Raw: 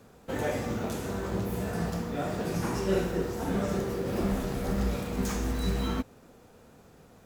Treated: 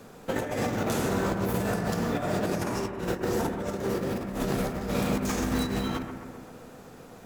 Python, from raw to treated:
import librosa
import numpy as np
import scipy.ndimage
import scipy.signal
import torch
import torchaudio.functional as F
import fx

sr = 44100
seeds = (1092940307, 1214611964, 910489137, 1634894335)

p1 = fx.peak_eq(x, sr, hz=66.0, db=-9.5, octaves=1.3)
p2 = fx.over_compress(p1, sr, threshold_db=-34.0, ratio=-0.5)
p3 = p2 + fx.echo_bbd(p2, sr, ms=130, stages=2048, feedback_pct=64, wet_db=-8, dry=0)
y = p3 * librosa.db_to_amplitude(5.0)